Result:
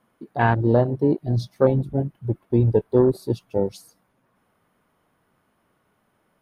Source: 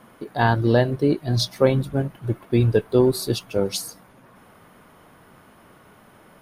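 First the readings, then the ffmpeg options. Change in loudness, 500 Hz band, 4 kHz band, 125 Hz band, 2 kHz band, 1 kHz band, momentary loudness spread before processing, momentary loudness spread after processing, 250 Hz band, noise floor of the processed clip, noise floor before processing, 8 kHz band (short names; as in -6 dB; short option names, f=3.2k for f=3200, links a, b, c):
-0.5 dB, 0.0 dB, under -15 dB, 0.0 dB, n/a, 0.0 dB, 9 LU, 9 LU, 0.0 dB, -69 dBFS, -52 dBFS, under -15 dB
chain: -af "afwtdn=0.0631"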